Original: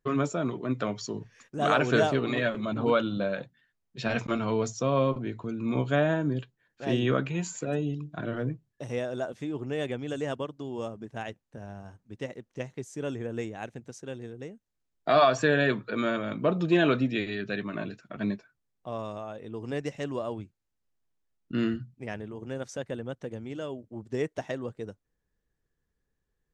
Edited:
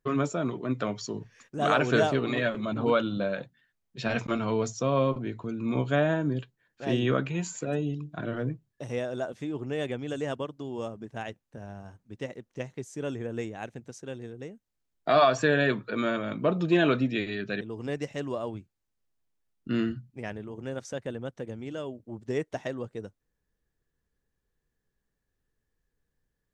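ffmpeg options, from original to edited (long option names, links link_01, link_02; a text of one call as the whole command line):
ffmpeg -i in.wav -filter_complex "[0:a]asplit=2[link_01][link_02];[link_01]atrim=end=17.612[link_03];[link_02]atrim=start=19.448[link_04];[link_03][link_04]acrossfade=duration=0.004:curve1=hsin:curve2=hsin" out.wav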